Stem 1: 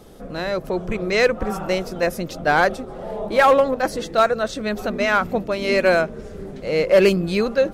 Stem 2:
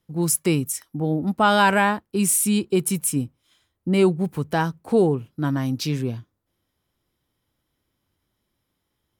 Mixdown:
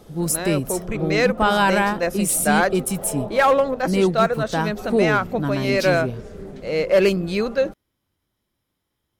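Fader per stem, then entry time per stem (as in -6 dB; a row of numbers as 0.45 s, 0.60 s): -2.0 dB, -1.0 dB; 0.00 s, 0.00 s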